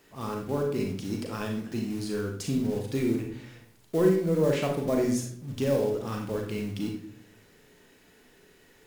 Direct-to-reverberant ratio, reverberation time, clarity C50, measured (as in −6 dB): 1.0 dB, 0.60 s, 4.5 dB